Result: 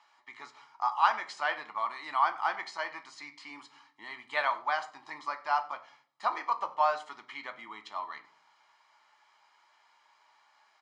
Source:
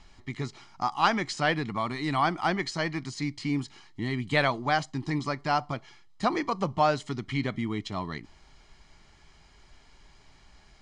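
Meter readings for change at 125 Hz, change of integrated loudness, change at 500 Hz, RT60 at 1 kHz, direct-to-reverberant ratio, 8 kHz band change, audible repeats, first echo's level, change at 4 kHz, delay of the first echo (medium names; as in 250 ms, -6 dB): under -35 dB, -3.0 dB, -8.5 dB, 0.45 s, 6.5 dB, under -10 dB, 1, -22.0 dB, -8.0 dB, 93 ms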